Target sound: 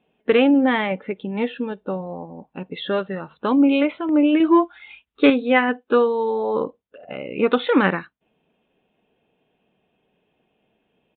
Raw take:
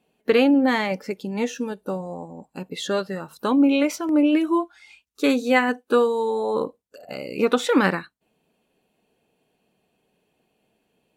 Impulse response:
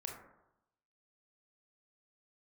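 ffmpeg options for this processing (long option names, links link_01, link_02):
-filter_complex "[0:a]asettb=1/sr,asplit=3[link_01][link_02][link_03];[link_01]atrim=end=4.404[link_04];[link_02]atrim=start=4.4:end=5.3,asetpts=PTS-STARTPTS,afade=type=in:duration=0.004:curve=qsin,afade=type=out:start_time=0.896:duration=0.004:curve=qsin,acontrast=33[link_05];[link_03]atrim=start=5.296[link_06];[link_04][link_05]acrossfade=duration=0.004:curve1=hsin:curve2=qsin[link_07];[link_07][link_06]acrossfade=duration=0.004:curve1=qsin:curve2=hsin,aresample=8000,aresample=44100,volume=1.5dB"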